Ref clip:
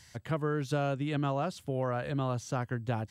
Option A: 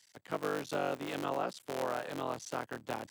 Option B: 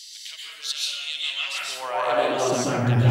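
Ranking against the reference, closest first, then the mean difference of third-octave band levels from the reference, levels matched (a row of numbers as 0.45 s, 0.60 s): A, B; 9.0 dB, 16.5 dB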